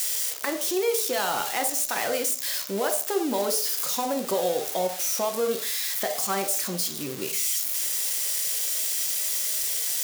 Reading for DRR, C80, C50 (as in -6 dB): 4.5 dB, 14.0 dB, 9.0 dB